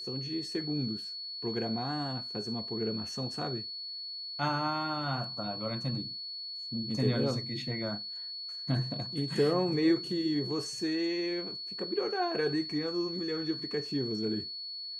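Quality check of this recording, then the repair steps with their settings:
tone 4400 Hz -38 dBFS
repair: notch 4400 Hz, Q 30

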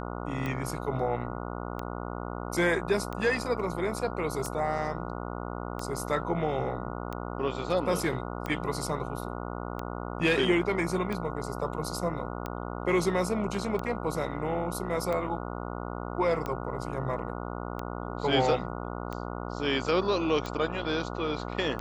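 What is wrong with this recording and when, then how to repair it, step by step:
buzz 60 Hz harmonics 24 -36 dBFS
tick 45 rpm -20 dBFS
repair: de-click; de-hum 60 Hz, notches 24

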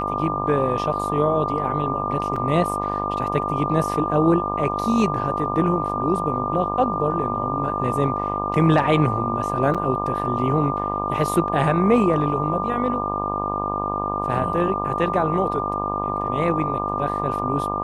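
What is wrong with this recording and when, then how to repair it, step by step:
buzz 50 Hz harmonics 25 -28 dBFS
tone 1200 Hz -26 dBFS
2.36 gap 4.2 ms
9.74–9.75 gap 6.5 ms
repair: de-hum 50 Hz, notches 25; notch 1200 Hz, Q 30; interpolate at 2.36, 4.2 ms; interpolate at 9.74, 6.5 ms

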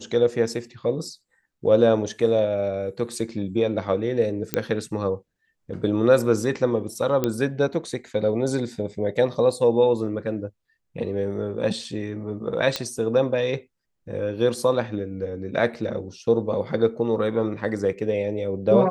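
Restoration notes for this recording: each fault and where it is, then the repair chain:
4.54 pop -7 dBFS
7.24 pop -9 dBFS
12.76 pop -9 dBFS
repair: de-click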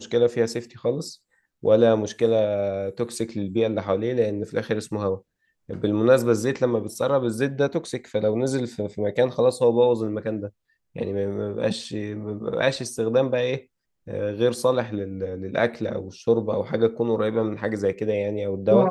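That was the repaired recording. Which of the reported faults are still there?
none

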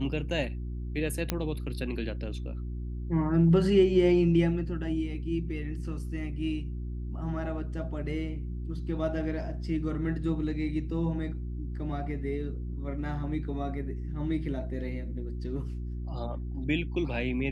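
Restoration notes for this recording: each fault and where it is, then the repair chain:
hum 60 Hz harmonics 6 -35 dBFS
1.3 pop -12 dBFS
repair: de-click; de-hum 60 Hz, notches 6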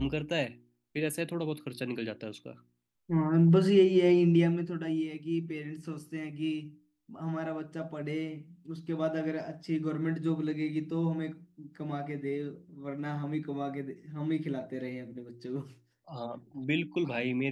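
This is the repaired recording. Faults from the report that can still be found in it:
none

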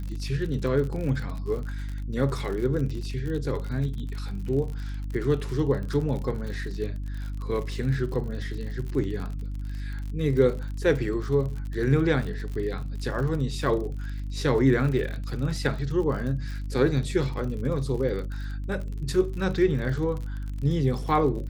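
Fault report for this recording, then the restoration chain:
crackle 51/s -33 dBFS
hum 50 Hz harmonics 6 -32 dBFS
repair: de-click; de-hum 50 Hz, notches 6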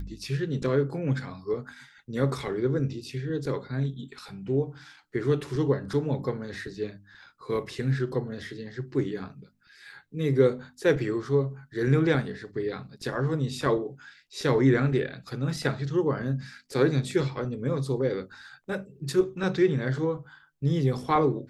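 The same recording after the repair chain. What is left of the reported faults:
none

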